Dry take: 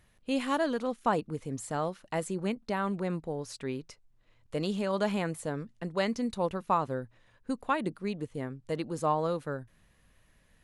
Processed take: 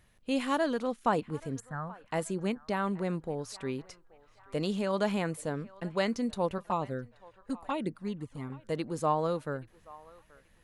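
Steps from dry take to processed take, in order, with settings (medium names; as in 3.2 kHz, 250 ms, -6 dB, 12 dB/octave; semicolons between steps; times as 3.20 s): 1.60–2.06 s: FFT filter 150 Hz 0 dB, 390 Hz -19 dB, 1.7 kHz +2 dB, 2.8 kHz -29 dB, 11 kHz -18 dB; 6.58–8.50 s: touch-sensitive flanger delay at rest 2.5 ms, full sweep at -24.5 dBFS; on a send: band-passed feedback delay 829 ms, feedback 52%, band-pass 1.3 kHz, level -19.5 dB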